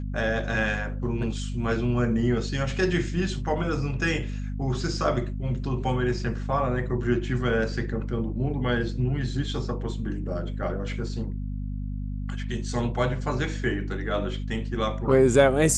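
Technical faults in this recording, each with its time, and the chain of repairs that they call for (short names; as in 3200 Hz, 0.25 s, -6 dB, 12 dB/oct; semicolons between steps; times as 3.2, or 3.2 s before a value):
hum 50 Hz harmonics 5 -31 dBFS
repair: de-hum 50 Hz, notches 5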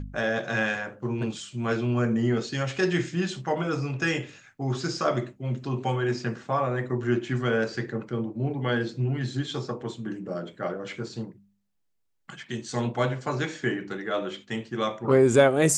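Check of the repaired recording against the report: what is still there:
none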